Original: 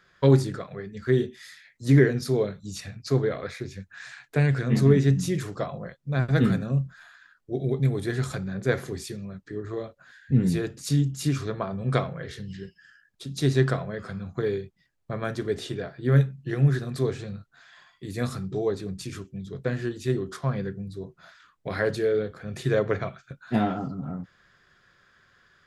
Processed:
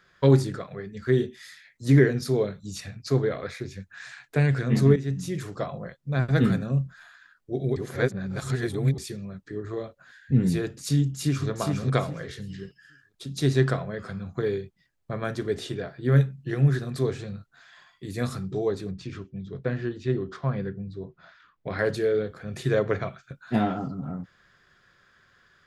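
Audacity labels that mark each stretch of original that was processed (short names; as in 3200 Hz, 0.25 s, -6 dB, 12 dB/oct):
4.960000	5.680000	fade in, from -12 dB
7.760000	8.980000	reverse
11.010000	11.480000	echo throw 0.41 s, feedback 25%, level -3.5 dB
18.910000	21.790000	air absorption 160 m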